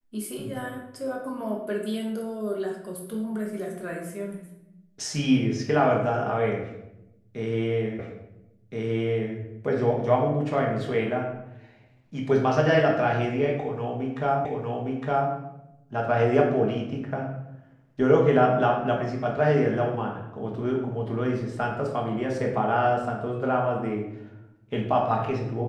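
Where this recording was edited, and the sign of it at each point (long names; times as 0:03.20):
0:07.99: the same again, the last 1.37 s
0:14.45: the same again, the last 0.86 s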